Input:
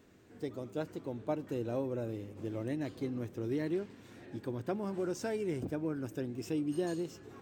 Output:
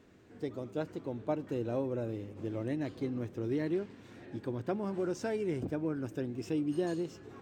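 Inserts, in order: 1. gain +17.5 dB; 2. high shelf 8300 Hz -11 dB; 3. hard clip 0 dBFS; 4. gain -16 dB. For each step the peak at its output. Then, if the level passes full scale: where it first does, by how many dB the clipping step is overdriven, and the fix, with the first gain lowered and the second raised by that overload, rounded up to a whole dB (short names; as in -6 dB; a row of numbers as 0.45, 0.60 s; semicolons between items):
-4.0, -4.0, -4.0, -20.0 dBFS; no overload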